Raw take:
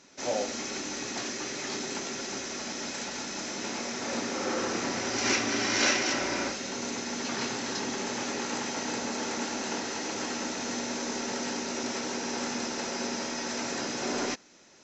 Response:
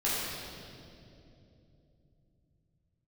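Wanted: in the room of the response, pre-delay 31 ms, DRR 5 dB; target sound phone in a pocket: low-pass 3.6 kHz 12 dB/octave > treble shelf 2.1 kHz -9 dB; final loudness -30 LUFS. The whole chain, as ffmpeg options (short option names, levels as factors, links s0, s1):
-filter_complex "[0:a]asplit=2[s0][s1];[1:a]atrim=start_sample=2205,adelay=31[s2];[s1][s2]afir=irnorm=-1:irlink=0,volume=0.178[s3];[s0][s3]amix=inputs=2:normalize=0,lowpass=3600,highshelf=f=2100:g=-9,volume=1.58"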